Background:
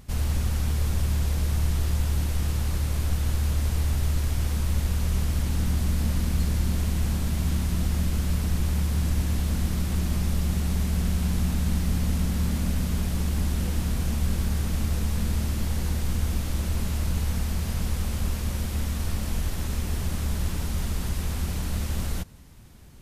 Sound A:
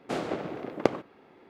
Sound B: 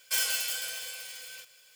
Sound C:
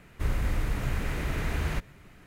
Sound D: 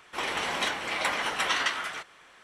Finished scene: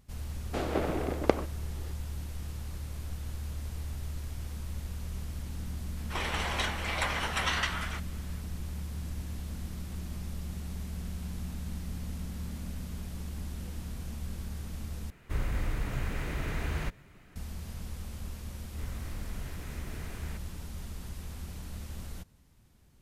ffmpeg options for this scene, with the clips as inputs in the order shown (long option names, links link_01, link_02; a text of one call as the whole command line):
ffmpeg -i bed.wav -i cue0.wav -i cue1.wav -i cue2.wav -i cue3.wav -filter_complex "[3:a]asplit=2[link_01][link_02];[0:a]volume=-13dB[link_03];[1:a]dynaudnorm=framelen=210:gausssize=3:maxgain=8dB[link_04];[link_03]asplit=2[link_05][link_06];[link_05]atrim=end=15.104[link_07];[link_01]atrim=end=2.26,asetpts=PTS-STARTPTS,volume=-3.5dB[link_08];[link_06]atrim=start=17.356[link_09];[link_04]atrim=end=1.49,asetpts=PTS-STARTPTS,volume=-3.5dB,afade=type=in:duration=0.004:curve=hsin,afade=type=out:start_time=1.486:duration=0.004:curve=hsin,adelay=440[link_10];[4:a]atrim=end=2.43,asetpts=PTS-STARTPTS,volume=-3.5dB,afade=type=in:duration=0.004:curve=hsin,afade=type=out:start_time=2.426:duration=0.004:curve=hsin,adelay=5970[link_11];[link_02]atrim=end=2.26,asetpts=PTS-STARTPTS,volume=-13dB,afade=type=in:duration=0.004:curve=hsin,afade=type=out:start_time=2.256:duration=0.004:curve=hsin,adelay=18580[link_12];[link_07][link_08]acrossfade=duration=0.004:curve1=hsin:curve2=hsin[link_13];[link_13][link_09]acrossfade=duration=0.004:curve1=hsin:curve2=hsin[link_14];[link_14][link_10][link_11][link_12]amix=inputs=4:normalize=0" out.wav